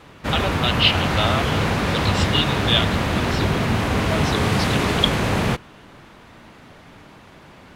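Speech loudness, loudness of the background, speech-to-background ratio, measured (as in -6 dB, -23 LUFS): -24.0 LUFS, -21.0 LUFS, -3.0 dB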